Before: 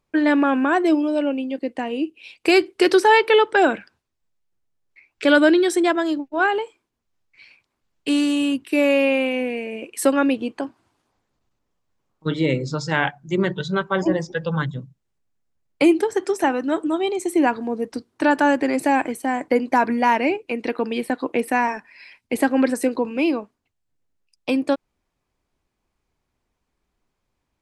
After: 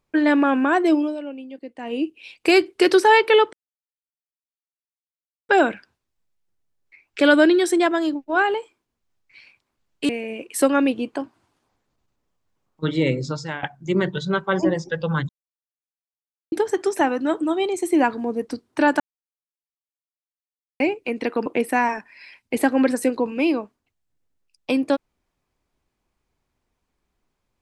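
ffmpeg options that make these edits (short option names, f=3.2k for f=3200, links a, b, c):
-filter_complex "[0:a]asplit=11[a][b][c][d][e][f][g][h][i][j][k];[a]atrim=end=1.17,asetpts=PTS-STARTPTS,afade=t=out:st=1.02:d=0.15:silence=0.298538[l];[b]atrim=start=1.17:end=1.79,asetpts=PTS-STARTPTS,volume=-10.5dB[m];[c]atrim=start=1.79:end=3.53,asetpts=PTS-STARTPTS,afade=t=in:d=0.15:silence=0.298538,afade=t=out:st=1.736:d=0.004:c=hsin,apad=pad_dur=1.96[n];[d]atrim=start=3.53:end=8.132,asetpts=PTS-STARTPTS,afade=t=in:d=0.004:c=hsin[o];[e]atrim=start=9.518:end=13.06,asetpts=PTS-STARTPTS,afade=t=out:st=3.162:d=0.38:silence=0.11885[p];[f]atrim=start=13.06:end=14.72,asetpts=PTS-STARTPTS,afade=t=in:d=0.004:c=hsin:silence=0.11885,afade=t=out:st=1.656:d=0.004:c=hsin[q];[g]atrim=start=14.72:end=15.95,asetpts=PTS-STARTPTS,volume=0[r];[h]atrim=start=15.95:end=18.43,asetpts=PTS-STARTPTS,afade=t=in:d=0.004:c=hsin,afade=t=out:st=2.476:d=0.004:c=hsin[s];[i]atrim=start=18.43:end=20.23,asetpts=PTS-STARTPTS,volume=0[t];[j]atrim=start=20.23:end=20.892,asetpts=PTS-STARTPTS,afade=t=in:d=0.004:c=hsin[u];[k]atrim=start=21.248[v];[l][m][n][o]concat=n=4:v=0:a=1[w];[p][q][r][s][t][u]concat=n=6:v=0:a=1[x];[w][x]acrossfade=d=0.004:c1=hsin:c2=hsin[y];[y][v]acrossfade=d=0.004:c1=hsin:c2=hsin"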